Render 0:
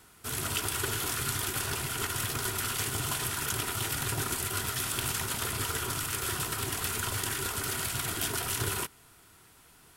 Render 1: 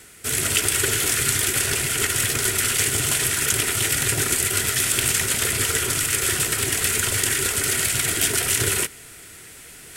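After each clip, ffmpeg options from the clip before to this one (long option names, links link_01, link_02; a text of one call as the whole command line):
ffmpeg -i in.wav -af "equalizer=frequency=500:width_type=o:width=1:gain=6,equalizer=frequency=1000:width_type=o:width=1:gain=-10,equalizer=frequency=2000:width_type=o:width=1:gain=9,equalizer=frequency=8000:width_type=o:width=1:gain=8,areverse,acompressor=mode=upward:threshold=-42dB:ratio=2.5,areverse,volume=6.5dB" out.wav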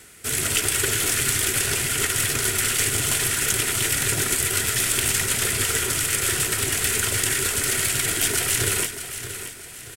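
ffmpeg -i in.wav -filter_complex "[0:a]aeval=exprs='(tanh(2.24*val(0)+0.35)-tanh(0.35))/2.24':channel_layout=same,asplit=2[link_01][link_02];[link_02]aecho=0:1:629|1258|1887|2516:0.282|0.107|0.0407|0.0155[link_03];[link_01][link_03]amix=inputs=2:normalize=0" out.wav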